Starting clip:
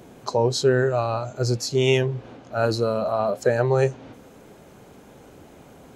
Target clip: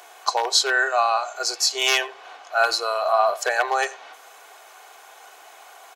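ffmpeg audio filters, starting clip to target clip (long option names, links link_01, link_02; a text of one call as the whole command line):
ffmpeg -i in.wav -filter_complex "[0:a]aeval=exprs='0.316*(abs(mod(val(0)/0.316+3,4)-2)-1)':channel_layout=same,highpass=frequency=760:width=0.5412,highpass=frequency=760:width=1.3066,aecho=1:1:2.7:0.5,asplit=2[link_01][link_02];[link_02]adelay=90,highpass=300,lowpass=3400,asoftclip=type=hard:threshold=-20.5dB,volume=-19dB[link_03];[link_01][link_03]amix=inputs=2:normalize=0,volume=8dB" out.wav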